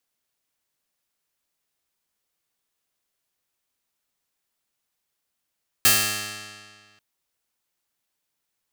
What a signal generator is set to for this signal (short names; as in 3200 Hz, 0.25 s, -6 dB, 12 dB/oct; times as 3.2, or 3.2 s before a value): plucked string G#2, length 1.14 s, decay 1.82 s, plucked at 0.21, bright